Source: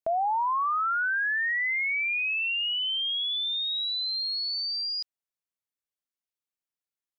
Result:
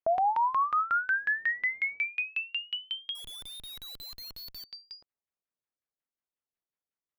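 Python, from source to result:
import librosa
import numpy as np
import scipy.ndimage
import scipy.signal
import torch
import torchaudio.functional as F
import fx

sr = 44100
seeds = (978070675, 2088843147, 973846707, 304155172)

y = fx.mod_noise(x, sr, seeds[0], snr_db=31, at=(1.15, 2.04))
y = fx.filter_lfo_lowpass(y, sr, shape='saw_down', hz=5.5, low_hz=400.0, high_hz=2800.0, q=1.1)
y = fx.schmitt(y, sr, flips_db=-58.5, at=(3.15, 4.64))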